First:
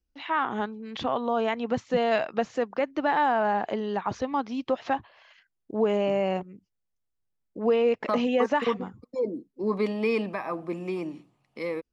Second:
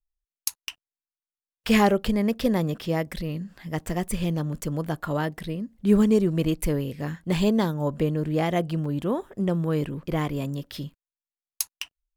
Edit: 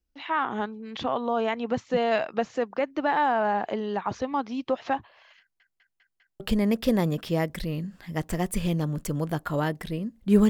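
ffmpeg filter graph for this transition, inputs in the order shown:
ffmpeg -i cue0.wav -i cue1.wav -filter_complex "[0:a]apad=whole_dur=10.49,atrim=end=10.49,asplit=5[link_01][link_02][link_03][link_04][link_05];[link_01]atrim=end=5.602[link_06];[link_02]atrim=start=5.398:end=5.602[link_07];[link_03]atrim=start=5.398:end=5.602[link_08];[link_04]atrim=start=5.398:end=5.602[link_09];[link_05]atrim=start=5.398:end=5.602[link_10];[1:a]atrim=start=1.968:end=6.06[link_11];[link_06][link_07]acrossfade=duration=0.004:curve1=hsin:curve2=hsin[link_12];[link_12][link_08]acrossfade=duration=0.004:curve1=hsin:curve2=hsin[link_13];[link_13][link_09]acrossfade=duration=0.004:curve1=hsin:curve2=hsin[link_14];[link_14][link_10]acrossfade=duration=0.004:curve1=hsin:curve2=hsin[link_15];[link_15][link_11]acrossfade=duration=0.004:curve1=hsin:curve2=hsin" out.wav

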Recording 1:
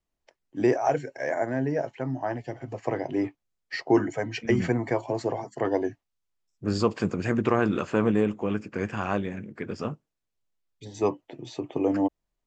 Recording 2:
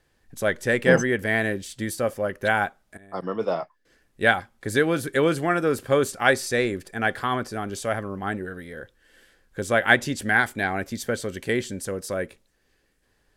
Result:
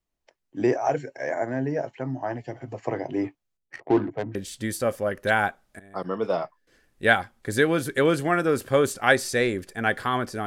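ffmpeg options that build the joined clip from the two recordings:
ffmpeg -i cue0.wav -i cue1.wav -filter_complex "[0:a]asettb=1/sr,asplit=3[link_01][link_02][link_03];[link_01]atrim=end=3.574[link_04];[link_02]atrim=start=3.57:end=4.35,asetpts=PTS-STARTPTS,afade=type=in:duration=0.004:curve=qsin,afade=type=out:start_time=0.776:duration=0.004:curve=qsin,adynamicsmooth=sensitivity=1.5:basefreq=530[link_05];[link_03]atrim=start=4.346[link_06];[link_04][link_05]acrossfade=duration=0.004:curve1=hsin:curve2=qsin[link_07];[link_07][link_06]acrossfade=duration=0.004:curve1=qsin:curve2=hsin,apad=whole_dur=10.46,atrim=end=10.46,atrim=end=4.352[link_08];[1:a]atrim=start=1.528:end=7.64[link_09];[link_08][link_09]acrossfade=duration=0.004:curve1=hsin:curve2=hsin" out.wav

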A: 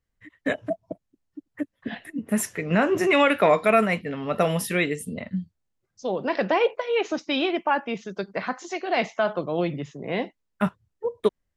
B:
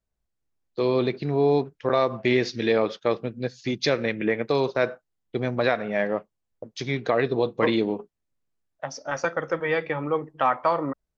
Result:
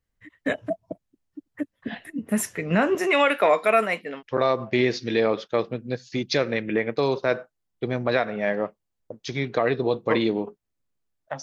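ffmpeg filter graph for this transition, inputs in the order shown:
ffmpeg -i cue0.wav -i cue1.wav -filter_complex "[0:a]asettb=1/sr,asplit=3[link_01][link_02][link_03];[link_01]atrim=end=2.954[link_04];[link_02]atrim=start=2.95:end=4.23,asetpts=PTS-STARTPTS,afade=type=in:duration=0.004:curve=qsin,afade=type=out:start_time=1.276:duration=0.004:curve=qsin,highpass=350[link_05];[link_03]atrim=start=4.226[link_06];[link_04][link_05]acrossfade=duration=0.004:curve1=hsin:curve2=qsin[link_07];[link_07][link_06]acrossfade=duration=0.004:curve1=qsin:curve2=hsin,apad=whole_dur=11.42,atrim=end=11.42,atrim=end=4.23,asetpts=PTS-STARTPTS[link_08];[1:a]atrim=start=1.69:end=8.94,asetpts=PTS-STARTPTS[link_09];[link_08][link_09]acrossfade=duration=0.06:curve1=tri:curve2=tri" out.wav

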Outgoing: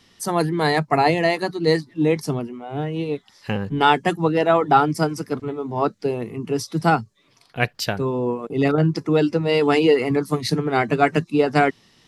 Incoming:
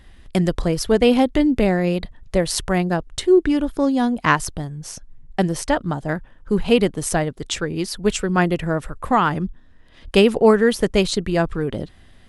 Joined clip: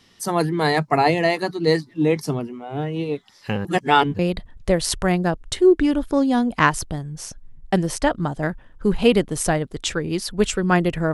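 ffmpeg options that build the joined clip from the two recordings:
ffmpeg -i cue0.wav -i cue1.wav -filter_complex "[0:a]apad=whole_dur=11.13,atrim=end=11.13,asplit=2[link_01][link_02];[link_01]atrim=end=3.652[link_03];[link_02]atrim=start=3.648:end=4.192,asetpts=PTS-STARTPTS,areverse[link_04];[1:a]atrim=start=1.848:end=8.79[link_05];[link_03][link_04]acrossfade=duration=0.004:curve1=hsin:curve2=hsin[link_06];[link_06][link_05]acrossfade=duration=0.004:curve1=hsin:curve2=hsin" out.wav

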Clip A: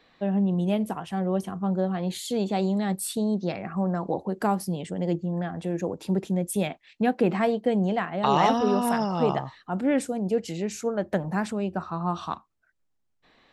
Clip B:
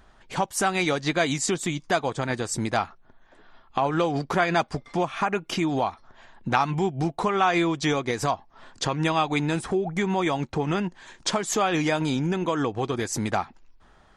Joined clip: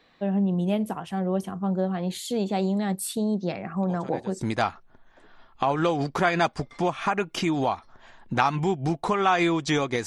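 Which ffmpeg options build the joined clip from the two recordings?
ffmpeg -i cue0.wav -i cue1.wav -filter_complex "[1:a]asplit=2[link_01][link_02];[0:a]apad=whole_dur=10.06,atrim=end=10.06,atrim=end=4.412[link_03];[link_02]atrim=start=2.558:end=8.21[link_04];[link_01]atrim=start=1.98:end=2.56,asetpts=PTS-STARTPTS,volume=-15dB,afade=type=in:duration=0.004:curve=hsin,afade=type=out:start_time=0.576:duration=0.004:curve=hsin,adelay=3830[link_05];[link_03][link_04]acrossfade=duration=0.004:curve1=hsin:curve2=hsin[link_06];[link_06][link_05]amix=inputs=2:normalize=0" out.wav

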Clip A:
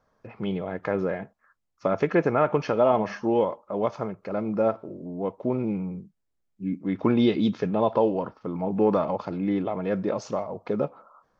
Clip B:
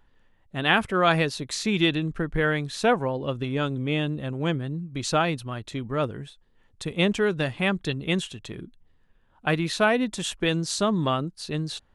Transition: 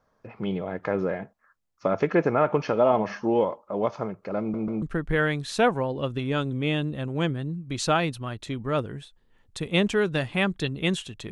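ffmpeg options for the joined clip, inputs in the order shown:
ffmpeg -i cue0.wav -i cue1.wav -filter_complex "[0:a]apad=whole_dur=11.31,atrim=end=11.31,asplit=3[link_01][link_02][link_03];[link_01]atrim=end=4.542[link_04];[link_02]atrim=start=4.398:end=4.542[link_05];[link_03]atrim=start=4.398:end=4.542[link_06];[1:a]atrim=start=2.068:end=8.56[link_07];[link_04][link_05]acrossfade=duration=0.004:curve1=hsin:curve2=hsin[link_08];[link_08][link_06]acrossfade=duration=0.004:curve1=hsin:curve2=hsin[link_09];[link_09][link_07]acrossfade=duration=0.004:curve1=hsin:curve2=hsin" out.wav

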